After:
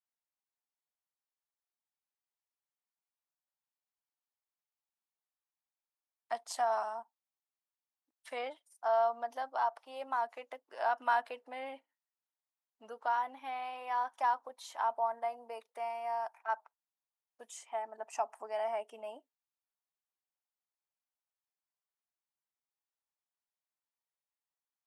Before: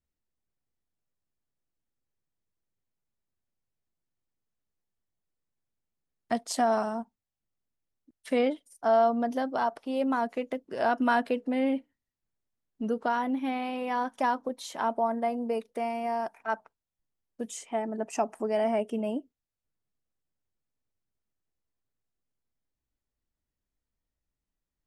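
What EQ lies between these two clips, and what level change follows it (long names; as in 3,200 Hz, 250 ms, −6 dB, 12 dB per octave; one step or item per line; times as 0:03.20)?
high-pass with resonance 860 Hz, resonance Q 2.1
−8.5 dB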